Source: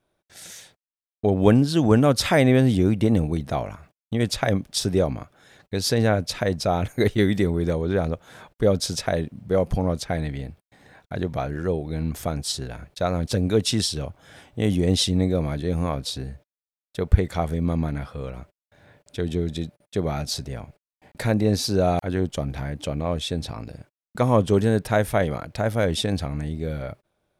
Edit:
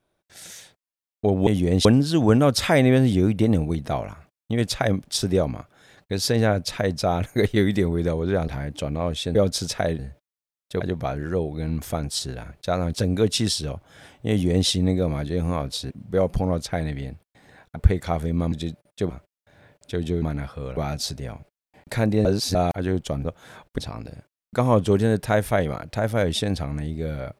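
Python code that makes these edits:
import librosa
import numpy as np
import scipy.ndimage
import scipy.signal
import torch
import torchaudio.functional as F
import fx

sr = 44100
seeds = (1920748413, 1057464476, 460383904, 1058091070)

y = fx.edit(x, sr, fx.swap(start_s=8.1, length_s=0.53, other_s=22.53, other_length_s=0.87),
    fx.swap(start_s=9.27, length_s=1.86, other_s=16.23, other_length_s=0.81),
    fx.duplicate(start_s=14.63, length_s=0.38, to_s=1.47),
    fx.swap(start_s=17.8, length_s=0.55, other_s=19.47, other_length_s=0.58),
    fx.reverse_span(start_s=21.53, length_s=0.3), tone=tone)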